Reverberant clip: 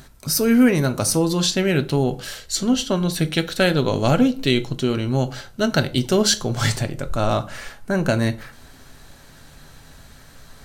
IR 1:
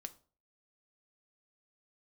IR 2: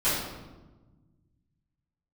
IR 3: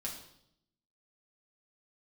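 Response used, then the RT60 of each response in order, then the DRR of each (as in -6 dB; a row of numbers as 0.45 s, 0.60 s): 1; 0.40 s, 1.2 s, 0.75 s; 8.5 dB, -15.0 dB, -3.0 dB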